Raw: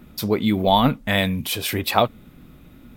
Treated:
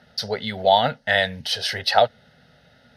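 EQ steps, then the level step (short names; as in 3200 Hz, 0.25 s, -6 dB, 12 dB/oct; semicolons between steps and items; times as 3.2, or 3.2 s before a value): speaker cabinet 110–6700 Hz, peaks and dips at 140 Hz -3 dB, 200 Hz -7 dB, 310 Hz -7 dB, 1200 Hz -7 dB, 3500 Hz -10 dB; tilt +2.5 dB/oct; fixed phaser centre 1600 Hz, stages 8; +5.5 dB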